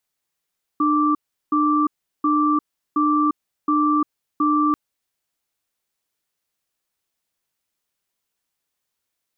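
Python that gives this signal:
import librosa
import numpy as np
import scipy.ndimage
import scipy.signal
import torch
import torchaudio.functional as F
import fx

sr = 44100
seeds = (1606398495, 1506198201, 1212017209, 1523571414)

y = fx.cadence(sr, length_s=3.94, low_hz=300.0, high_hz=1170.0, on_s=0.35, off_s=0.37, level_db=-18.0)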